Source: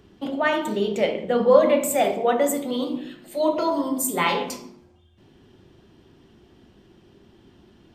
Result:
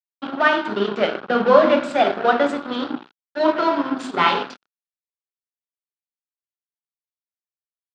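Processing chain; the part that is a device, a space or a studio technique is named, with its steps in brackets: blown loudspeaker (crossover distortion -31 dBFS; speaker cabinet 200–4400 Hz, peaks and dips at 510 Hz -6 dB, 1400 Hz +9 dB, 2100 Hz -5 dB); gain +6.5 dB

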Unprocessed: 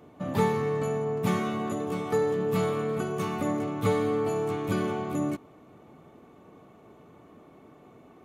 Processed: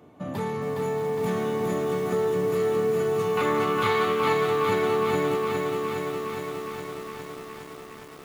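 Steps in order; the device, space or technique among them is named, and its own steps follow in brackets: soft clipper into limiter (soft clip -17.5 dBFS, distortion -22 dB; limiter -23 dBFS, peak gain reduction 5 dB); HPF 56 Hz 12 dB/oct; 3.37–4.33 band shelf 2100 Hz +14 dB 2.7 oct; thinning echo 0.628 s, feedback 37%, high-pass 240 Hz, level -10 dB; lo-fi delay 0.412 s, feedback 80%, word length 8-bit, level -3.5 dB

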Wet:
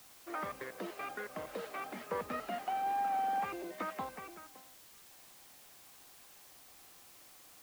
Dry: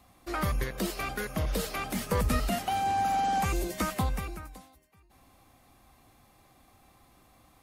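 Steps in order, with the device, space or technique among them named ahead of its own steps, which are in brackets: wax cylinder (BPF 360–2100 Hz; wow and flutter 25 cents; white noise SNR 17 dB); gain -5.5 dB

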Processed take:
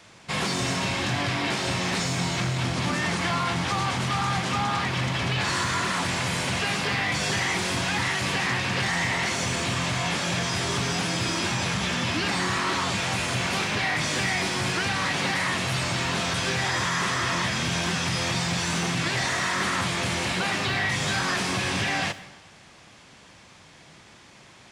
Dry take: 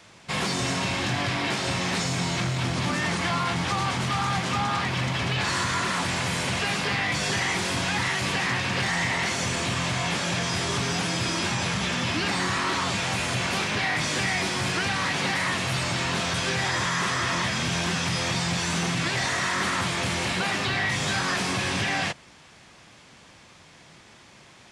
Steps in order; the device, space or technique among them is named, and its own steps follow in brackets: saturated reverb return (on a send at -9.5 dB: reverb RT60 0.90 s, pre-delay 36 ms + soft clip -29.5 dBFS, distortion -9 dB)

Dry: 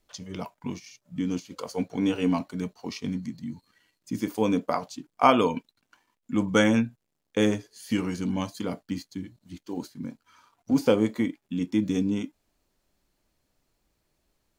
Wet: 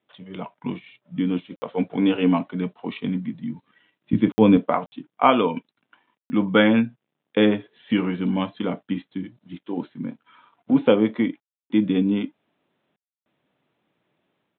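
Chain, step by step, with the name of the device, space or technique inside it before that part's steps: call with lost packets (HPF 130 Hz 24 dB/oct; downsampling 8000 Hz; AGC gain up to 5.5 dB; packet loss packets of 60 ms bursts); 4.13–4.57 bell 94 Hz +12 dB 2.5 oct

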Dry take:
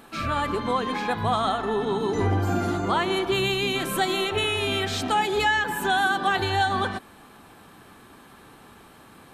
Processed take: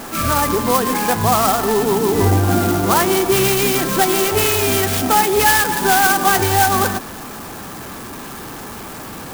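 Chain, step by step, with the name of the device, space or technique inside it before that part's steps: early CD player with a faulty converter (zero-crossing step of -36 dBFS; clock jitter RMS 0.074 ms); gain +8 dB

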